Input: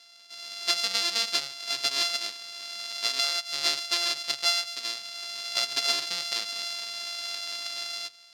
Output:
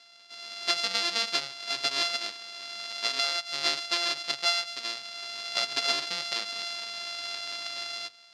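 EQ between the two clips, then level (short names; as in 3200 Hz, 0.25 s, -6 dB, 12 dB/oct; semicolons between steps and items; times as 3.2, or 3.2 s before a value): LPF 11000 Hz 12 dB/oct; high shelf 5100 Hz -10.5 dB; +2.5 dB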